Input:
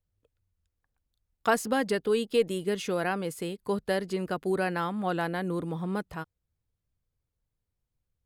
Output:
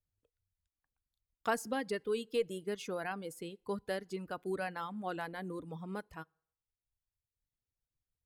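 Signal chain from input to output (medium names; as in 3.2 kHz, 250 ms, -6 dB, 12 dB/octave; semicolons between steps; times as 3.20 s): FDN reverb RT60 0.68 s, low-frequency decay 0.8×, high-frequency decay 0.75×, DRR 17 dB; reverb removal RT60 1.2 s; trim -8 dB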